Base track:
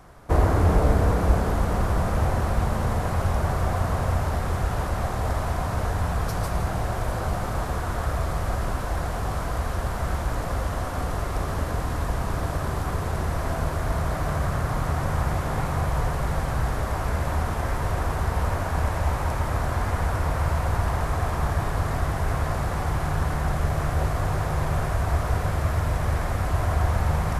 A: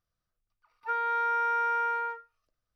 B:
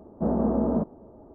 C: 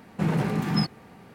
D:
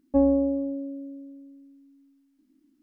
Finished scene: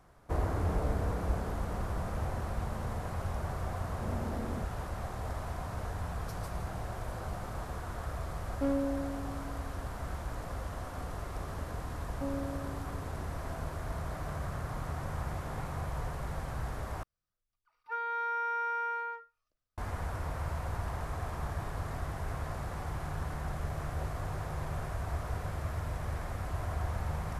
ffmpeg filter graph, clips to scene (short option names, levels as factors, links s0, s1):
-filter_complex "[4:a]asplit=2[s0][s1];[0:a]volume=0.251[s2];[s0]volume=5.62,asoftclip=hard,volume=0.178[s3];[s2]asplit=2[s4][s5];[s4]atrim=end=17.034[s6];[1:a]atrim=end=2.75,asetpts=PTS-STARTPTS,volume=0.531[s7];[s5]atrim=start=19.776[s8];[2:a]atrim=end=1.34,asetpts=PTS-STARTPTS,volume=0.158,afade=t=in:d=0.004:c=hsin,afade=t=out:st=1.336:d=0.004:c=hsin,adelay=168021S[s9];[s3]atrim=end=2.82,asetpts=PTS-STARTPTS,volume=0.316,afade=t=in:d=0.004:c=hsin,afade=t=out:st=2.816:d=0.004:c=hsin,adelay=8470[s10];[s1]atrim=end=2.82,asetpts=PTS-STARTPTS,volume=0.141,afade=t=in:d=0.004:c=hsin,afade=t=out:st=2.816:d=0.004:c=hsin,adelay=12070[s11];[s6][s7]acrossfade=d=0.004:c1=hsin:c2=hsin[s12];[s12][s8]acrossfade=d=0.004:c1=hsin:c2=hsin[s13];[s13][s9][s10][s11]amix=inputs=4:normalize=0"